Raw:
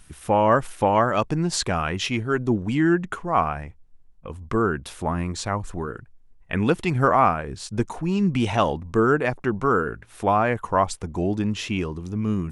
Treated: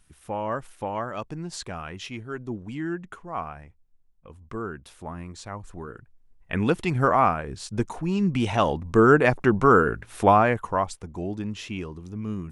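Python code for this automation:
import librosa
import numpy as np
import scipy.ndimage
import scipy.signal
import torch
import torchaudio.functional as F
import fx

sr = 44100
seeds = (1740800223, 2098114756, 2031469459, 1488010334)

y = fx.gain(x, sr, db=fx.line((5.46, -11.0), (6.54, -2.0), (8.53, -2.0), (9.18, 4.0), (10.27, 4.0), (10.96, -7.0)))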